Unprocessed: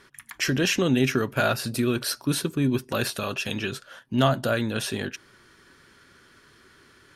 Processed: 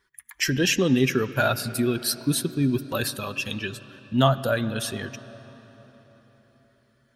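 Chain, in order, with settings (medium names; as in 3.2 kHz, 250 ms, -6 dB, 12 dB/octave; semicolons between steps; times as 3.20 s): expander on every frequency bin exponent 1.5; treble shelf 9.4 kHz +5 dB; reverberation RT60 4.4 s, pre-delay 54 ms, DRR 14.5 dB; trim +3 dB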